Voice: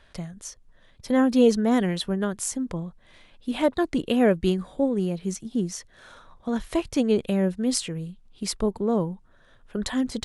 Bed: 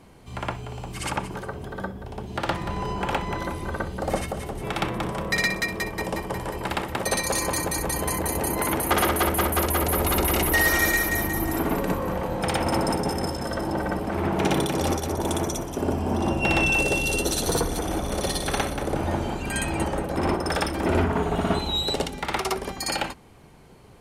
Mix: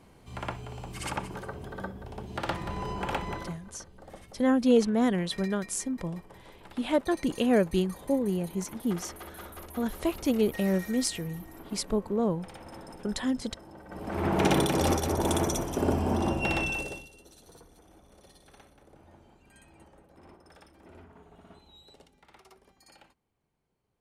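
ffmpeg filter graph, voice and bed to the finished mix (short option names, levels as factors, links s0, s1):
-filter_complex "[0:a]adelay=3300,volume=0.668[s0];[1:a]volume=5.96,afade=t=out:st=3.3:d=0.3:silence=0.149624,afade=t=in:st=13.88:d=0.48:silence=0.0891251,afade=t=out:st=15.97:d=1.12:silence=0.0354813[s1];[s0][s1]amix=inputs=2:normalize=0"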